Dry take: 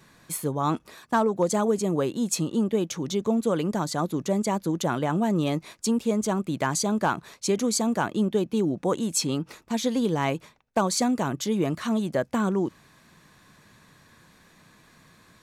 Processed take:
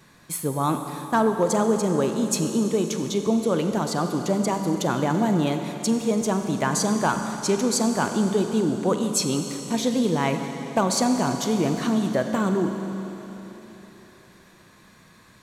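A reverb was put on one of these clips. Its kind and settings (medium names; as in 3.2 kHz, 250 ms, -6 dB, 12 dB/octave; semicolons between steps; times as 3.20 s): Schroeder reverb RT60 3.8 s, combs from 32 ms, DRR 5.5 dB; trim +1.5 dB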